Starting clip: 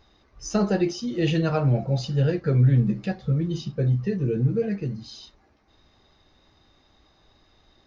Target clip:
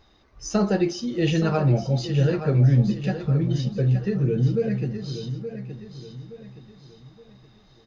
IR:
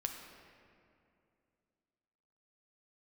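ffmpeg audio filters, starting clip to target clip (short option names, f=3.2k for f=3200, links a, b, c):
-filter_complex "[0:a]aecho=1:1:871|1742|2613|3484:0.316|0.12|0.0457|0.0174,asplit=2[a][b];[1:a]atrim=start_sample=2205,afade=t=out:st=0.32:d=0.01,atrim=end_sample=14553[c];[b][c]afir=irnorm=-1:irlink=0,volume=-17.5dB[d];[a][d]amix=inputs=2:normalize=0"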